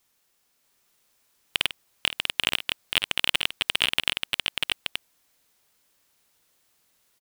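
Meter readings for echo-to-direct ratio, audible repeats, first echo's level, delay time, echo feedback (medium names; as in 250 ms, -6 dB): -1.0 dB, 3, -13.0 dB, 51 ms, no regular repeats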